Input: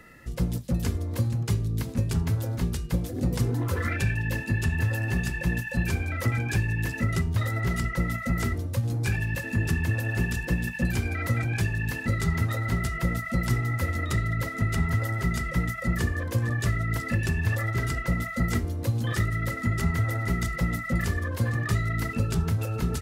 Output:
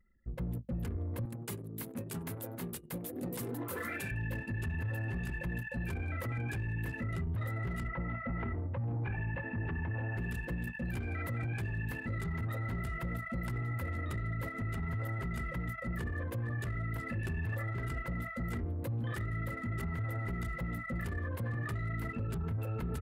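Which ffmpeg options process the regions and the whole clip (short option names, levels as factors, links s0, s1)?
-filter_complex "[0:a]asettb=1/sr,asplit=3[s0][s1][s2];[s0]atrim=end=1.254[s3];[s1]atrim=start=1.25:end=4.11,asetpts=PTS-STARTPTS,afade=t=in:d=0.004:c=qsin,afade=t=out:st=2.856:d=0.004:c=qsin,highpass=220,highshelf=f=5000:g=12,asplit=4[s4][s5][s6][s7];[s5]adelay=96,afreqshift=120,volume=0.112[s8];[s6]adelay=192,afreqshift=240,volume=0.0403[s9];[s7]adelay=288,afreqshift=360,volume=0.0146[s10];[s4][s8][s9][s10]amix=inputs=4:normalize=0,atrim=end_sample=126126[s11];[s2]atrim=start=4.106[s12];[s3][s11]acrossfade=d=0.004:c1=hsin:c2=qsin[s13];[s13][s12]acrossfade=d=0.004:c1=qsin:c2=hsin,asettb=1/sr,asplit=3[s14][s15][s16];[s14]atrim=end=7.884[s17];[s15]atrim=start=7.88:end=10.17,asetpts=PTS-STARTPTS,afade=t=in:d=0.004:c=qsin,afade=t=out:st=2.286:d=0.004:c=qsin,lowpass=f=2700:w=0.5412,lowpass=f=2700:w=1.3066,equalizer=f=870:w=2.1:g=7,aecho=1:1:134|268|402|536:0.0668|0.0381|0.0217|0.0124,atrim=end_sample=100989[s18];[s16]atrim=start=10.166[s19];[s17][s18]acrossfade=d=0.004:c1=hsin:c2=qsin[s20];[s20][s19]acrossfade=d=0.004:c1=qsin:c2=hsin,equalizer=f=5700:w=1:g=-12,alimiter=limit=0.0668:level=0:latency=1:release=11,anlmdn=0.398,volume=0.501"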